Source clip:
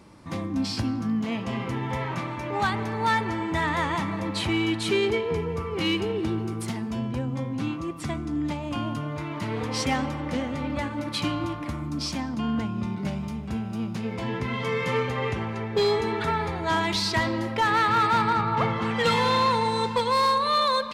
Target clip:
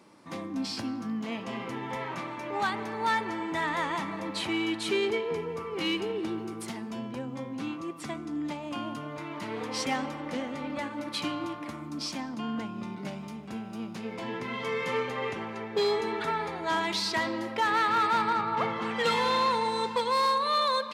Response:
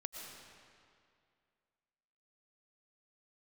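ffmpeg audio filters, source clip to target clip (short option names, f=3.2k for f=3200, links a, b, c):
-af "highpass=230,volume=-3.5dB"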